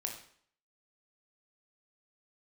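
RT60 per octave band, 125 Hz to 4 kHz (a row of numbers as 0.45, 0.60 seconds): 0.55, 0.60, 0.55, 0.60, 0.55, 0.55 seconds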